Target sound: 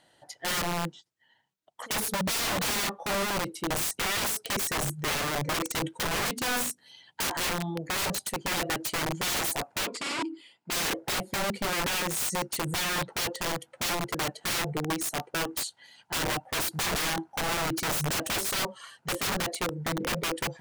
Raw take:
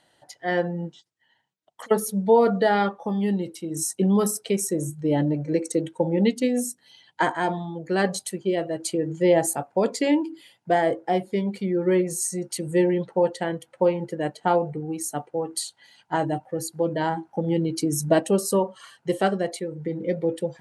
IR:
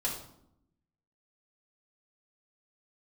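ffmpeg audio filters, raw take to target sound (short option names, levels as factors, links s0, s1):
-filter_complex "[0:a]asettb=1/sr,asplit=3[s0][s1][s2];[s0]atrim=end=3.704[s3];[s1]atrim=start=3.7:end=4.18,asetpts=PTS-STARTPTS,afade=t=in:d=0.004:c=qsin,afade=t=out:st=0.476:d=0.004:c=qsin,lowshelf=f=350:g=5.5[s4];[s2]atrim=start=4.176[s5];[s3][s4]acrossfade=d=0.004:c1=hsin:c2=qsin[s6];[s6][s5]acrossfade=d=0.004:c1=qsin:c2=hsin,asettb=1/sr,asplit=3[s7][s8][s9];[s7]atrim=end=16.524[s10];[s8]atrim=start=16.52:end=17.02,asetpts=PTS-STARTPTS,afade=t=in:d=0.004:c=qsin,afade=t=out:st=0.496:d=0.004:c=qsin,acontrast=51[s11];[s9]atrim=start=17.016[s12];[s10][s11]acrossfade=d=0.004:c1=hsin:c2=qsin[s13];[s13][s12]acrossfade=d=0.004:c1=qsin:c2=hsin,aeval=exprs='(mod(15.8*val(0)+1,2)-1)/15.8':c=same,asplit=3[s14][s15][s16];[s14]afade=t=out:st=9.85:d=0.02[s17];[s15]highpass=220,equalizer=f=550:t=q:w=4:g=-6,equalizer=f=780:t=q:w=4:g=-5,equalizer=f=1700:t=q:w=4:g=-6,equalizer=f=3700:t=q:w=4:g=-4,equalizer=f=6100:t=q:w=4:g=-10,lowpass=f=7900:w=0.5412,lowpass=f=7900:w=1.3066,afade=t=in:st=9.85:d=0.02,afade=t=out:st=10.7:d=0.02[s18];[s16]afade=t=in:st=10.7:d=0.02[s19];[s17][s18][s19]amix=inputs=3:normalize=0"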